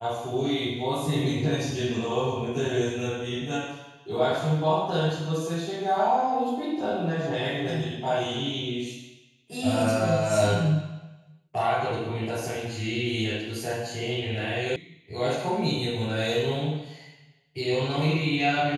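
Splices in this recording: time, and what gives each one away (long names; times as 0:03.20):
0:14.76: cut off before it has died away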